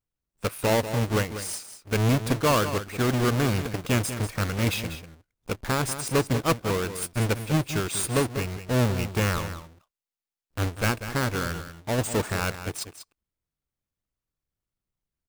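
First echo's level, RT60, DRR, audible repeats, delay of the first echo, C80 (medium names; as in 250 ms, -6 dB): -11.0 dB, no reverb, no reverb, 1, 192 ms, no reverb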